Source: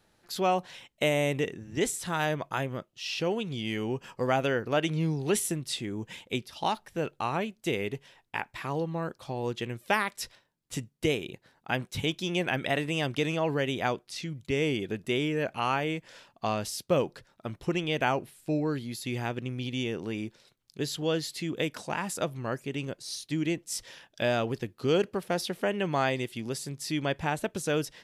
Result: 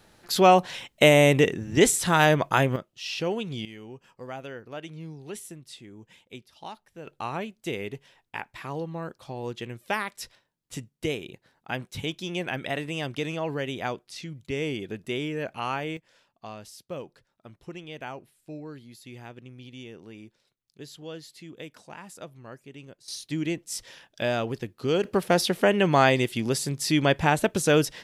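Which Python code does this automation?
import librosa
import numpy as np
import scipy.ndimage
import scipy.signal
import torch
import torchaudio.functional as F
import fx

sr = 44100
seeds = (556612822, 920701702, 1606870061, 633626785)

y = fx.gain(x, sr, db=fx.steps((0.0, 9.5), (2.76, 1.0), (3.65, -11.5), (7.07, -2.0), (15.97, -11.0), (23.08, 0.5), (25.05, 8.0)))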